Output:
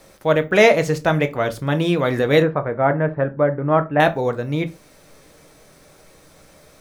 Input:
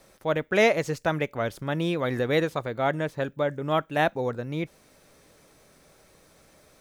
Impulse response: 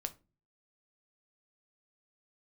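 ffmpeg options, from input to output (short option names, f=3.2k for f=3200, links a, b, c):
-filter_complex "[0:a]asettb=1/sr,asplit=3[a][b][c];[a]atrim=end=2.424[d];[b]atrim=start=2.42:end=4,asetpts=PTS-STARTPTS,afade=t=in:d=0.004:c=qsin,afade=t=out:st=1.576:d=0.004:c=qsin,lowpass=f=1.9k:w=0.5412,lowpass=f=1.9k:w=1.3066[e];[c]atrim=start=3.996[f];[d][e]acrossfade=d=0.004:c1=hsin:c2=qsin[g];[g][f]acrossfade=d=0.004:c1=qsin:c2=hsin[h];[1:a]atrim=start_sample=2205,atrim=end_sample=6174[i];[h][i]afir=irnorm=-1:irlink=0,volume=8.5dB"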